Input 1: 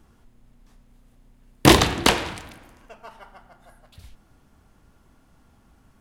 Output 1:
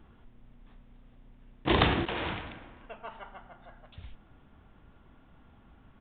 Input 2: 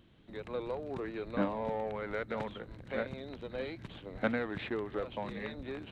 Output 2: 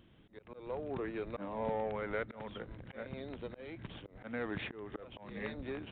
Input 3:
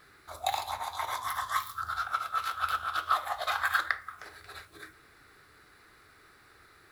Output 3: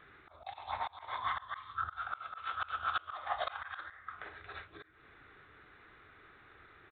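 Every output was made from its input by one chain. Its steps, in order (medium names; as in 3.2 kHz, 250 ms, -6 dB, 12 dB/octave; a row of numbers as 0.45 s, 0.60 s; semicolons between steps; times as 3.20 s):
slow attack 255 ms; resampled via 8 kHz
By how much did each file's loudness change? -12.0 LU, -3.5 LU, -8.0 LU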